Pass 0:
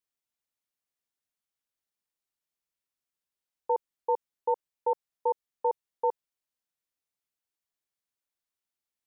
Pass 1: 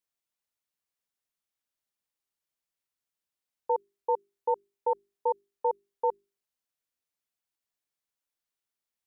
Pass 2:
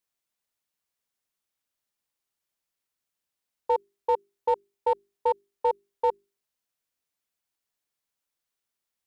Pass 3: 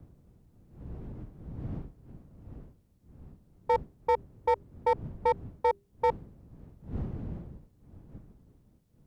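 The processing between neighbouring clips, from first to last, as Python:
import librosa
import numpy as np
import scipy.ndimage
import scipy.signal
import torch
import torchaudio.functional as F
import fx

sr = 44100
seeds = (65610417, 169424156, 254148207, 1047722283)

y1 = fx.hum_notches(x, sr, base_hz=50, count=8)
y2 = np.clip(y1, -10.0 ** (-19.5 / 20.0), 10.0 ** (-19.5 / 20.0))
y2 = y2 * librosa.db_to_amplitude(3.5)
y3 = fx.dmg_wind(y2, sr, seeds[0], corner_hz=160.0, level_db=-45.0)
y3 = fx.cheby_harmonics(y3, sr, harmonics=(5,), levels_db=(-22,), full_scale_db=-14.5)
y3 = y3 * librosa.db_to_amplitude(-1.5)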